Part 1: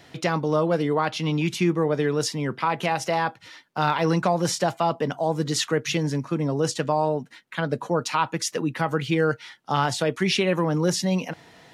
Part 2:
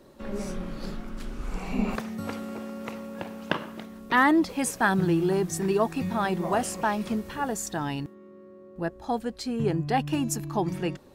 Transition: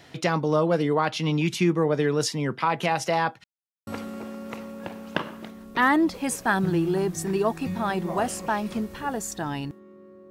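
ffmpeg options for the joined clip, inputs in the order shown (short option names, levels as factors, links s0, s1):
-filter_complex "[0:a]apad=whole_dur=10.3,atrim=end=10.3,asplit=2[s0][s1];[s0]atrim=end=3.44,asetpts=PTS-STARTPTS,afade=t=out:st=3.436:d=0.004:c=hsin[s2];[s1]atrim=start=3.44:end=3.87,asetpts=PTS-STARTPTS,volume=0[s3];[1:a]atrim=start=2.22:end=8.65,asetpts=PTS-STARTPTS,afade=t=in:d=0.004:c=hsin[s4];[s2][s3][s4]concat=n=3:v=0:a=1"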